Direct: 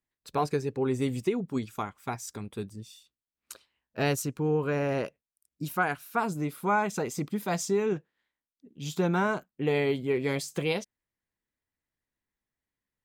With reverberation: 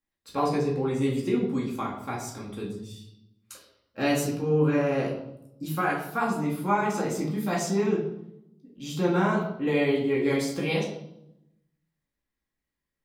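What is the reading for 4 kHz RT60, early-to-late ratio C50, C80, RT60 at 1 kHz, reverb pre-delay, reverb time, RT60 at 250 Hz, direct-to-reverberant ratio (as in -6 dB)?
0.65 s, 5.0 dB, 8.5 dB, 0.75 s, 4 ms, 0.80 s, 1.2 s, -4.5 dB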